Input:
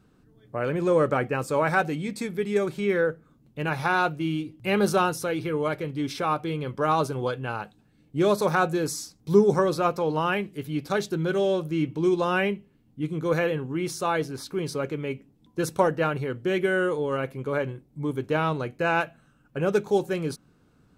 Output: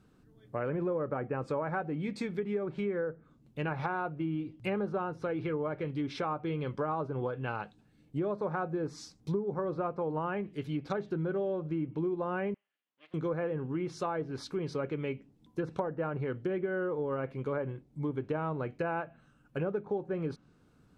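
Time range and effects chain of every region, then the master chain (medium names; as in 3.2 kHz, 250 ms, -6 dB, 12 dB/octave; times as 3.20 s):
12.54–13.14 s: comb filter that takes the minimum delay 0.63 ms + Bessel high-pass 2.5 kHz + distance through air 350 m
whole clip: low-pass that closes with the level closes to 1.3 kHz, closed at -22.5 dBFS; compression 10:1, threshold -26 dBFS; trim -3 dB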